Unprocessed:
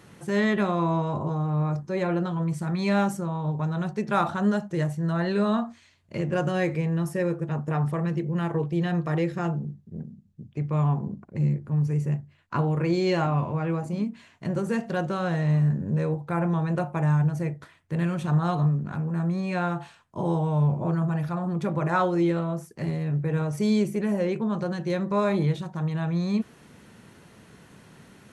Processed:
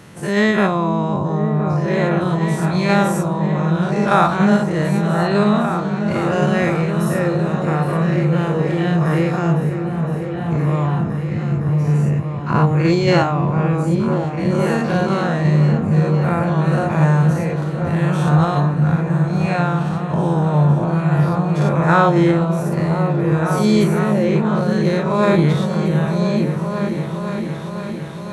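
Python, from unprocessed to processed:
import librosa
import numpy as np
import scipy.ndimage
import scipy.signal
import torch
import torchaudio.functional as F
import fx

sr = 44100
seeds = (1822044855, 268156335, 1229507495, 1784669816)

p1 = fx.spec_dilate(x, sr, span_ms=120)
p2 = fx.cheby1_lowpass(p1, sr, hz=4900.0, order=2, at=(10.87, 11.55))
p3 = fx.level_steps(p2, sr, step_db=10)
p4 = p2 + (p3 * librosa.db_to_amplitude(0.0))
y = fx.echo_opening(p4, sr, ms=511, hz=200, octaves=2, feedback_pct=70, wet_db=-3)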